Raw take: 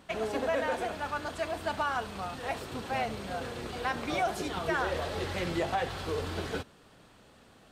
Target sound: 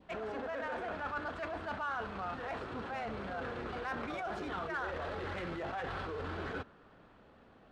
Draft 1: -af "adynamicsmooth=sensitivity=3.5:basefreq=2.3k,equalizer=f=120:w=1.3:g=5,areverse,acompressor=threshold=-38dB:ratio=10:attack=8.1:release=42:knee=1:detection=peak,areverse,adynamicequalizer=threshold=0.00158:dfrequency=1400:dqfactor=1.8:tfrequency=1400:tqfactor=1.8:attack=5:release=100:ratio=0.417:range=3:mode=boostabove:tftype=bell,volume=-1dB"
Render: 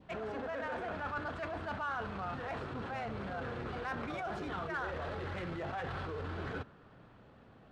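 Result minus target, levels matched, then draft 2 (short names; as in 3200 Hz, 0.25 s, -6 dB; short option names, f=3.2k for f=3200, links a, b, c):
125 Hz band +4.0 dB
-af "adynamicsmooth=sensitivity=3.5:basefreq=2.3k,equalizer=f=120:w=1.3:g=-3.5,areverse,acompressor=threshold=-38dB:ratio=10:attack=8.1:release=42:knee=1:detection=peak,areverse,adynamicequalizer=threshold=0.00158:dfrequency=1400:dqfactor=1.8:tfrequency=1400:tqfactor=1.8:attack=5:release=100:ratio=0.417:range=3:mode=boostabove:tftype=bell,volume=-1dB"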